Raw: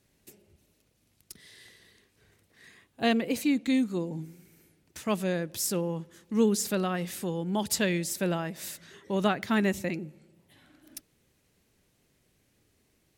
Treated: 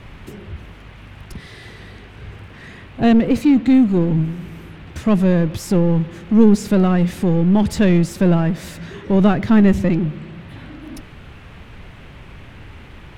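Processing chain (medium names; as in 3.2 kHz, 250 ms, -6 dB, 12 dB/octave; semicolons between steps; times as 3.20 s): power-law waveshaper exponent 0.7; RIAA curve playback; band noise 340–2900 Hz -51 dBFS; trim +4 dB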